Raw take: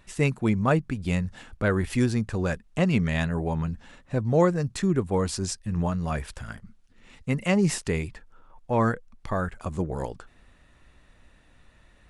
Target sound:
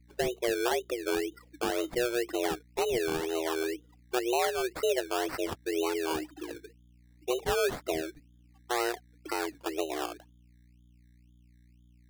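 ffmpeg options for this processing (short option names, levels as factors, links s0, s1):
-filter_complex "[0:a]agate=range=0.355:threshold=0.00316:ratio=16:detection=peak,afftdn=nr=35:nf=-36,highpass=f=52:w=0.5412,highpass=f=52:w=1.3066,asplit=2[s0][s1];[s1]acompressor=threshold=0.0251:ratio=12,volume=0.891[s2];[s0][s2]amix=inputs=2:normalize=0,alimiter=limit=0.2:level=0:latency=1:release=175,afreqshift=240,aeval=exprs='val(0)+0.00251*(sin(2*PI*60*n/s)+sin(2*PI*2*60*n/s)/2+sin(2*PI*3*60*n/s)/3+sin(2*PI*4*60*n/s)/4+sin(2*PI*5*60*n/s)/5)':c=same,acrusher=samples=18:mix=1:aa=0.000001:lfo=1:lforange=10.8:lforate=2,volume=0.501"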